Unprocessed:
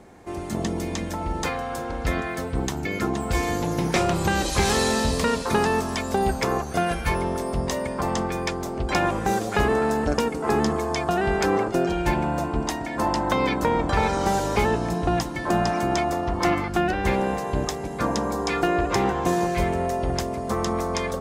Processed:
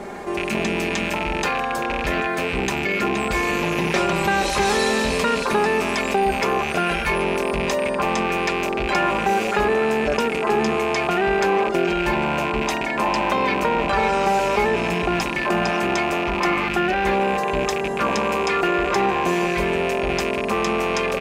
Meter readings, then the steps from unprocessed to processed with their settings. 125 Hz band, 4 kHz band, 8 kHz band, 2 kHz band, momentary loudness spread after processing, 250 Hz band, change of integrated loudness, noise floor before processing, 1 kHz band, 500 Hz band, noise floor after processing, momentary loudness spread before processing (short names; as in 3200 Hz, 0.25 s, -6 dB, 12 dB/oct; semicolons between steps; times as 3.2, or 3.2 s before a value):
-3.0 dB, +4.5 dB, -0.5 dB, +7.0 dB, 3 LU, +1.0 dB, +3.5 dB, -31 dBFS, +3.5 dB, +3.5 dB, -25 dBFS, 6 LU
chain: rattling part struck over -33 dBFS, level -20 dBFS; tone controls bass -9 dB, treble -6 dB; comb 5 ms, depth 57%; fast leveller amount 50%